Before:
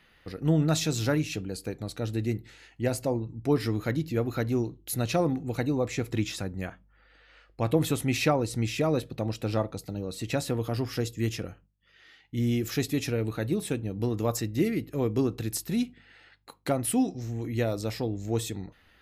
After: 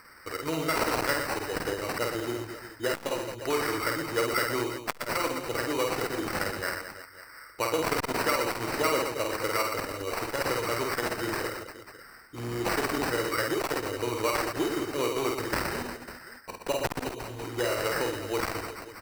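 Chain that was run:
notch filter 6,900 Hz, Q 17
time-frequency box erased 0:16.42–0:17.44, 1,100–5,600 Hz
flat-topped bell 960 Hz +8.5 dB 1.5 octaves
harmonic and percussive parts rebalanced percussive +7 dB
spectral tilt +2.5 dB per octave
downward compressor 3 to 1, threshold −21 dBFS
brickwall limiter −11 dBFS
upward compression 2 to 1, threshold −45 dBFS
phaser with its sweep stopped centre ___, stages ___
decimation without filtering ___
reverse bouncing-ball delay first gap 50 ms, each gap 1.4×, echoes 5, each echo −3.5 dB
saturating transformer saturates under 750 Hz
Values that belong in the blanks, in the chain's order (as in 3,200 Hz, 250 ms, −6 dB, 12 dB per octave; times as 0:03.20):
740 Hz, 6, 13×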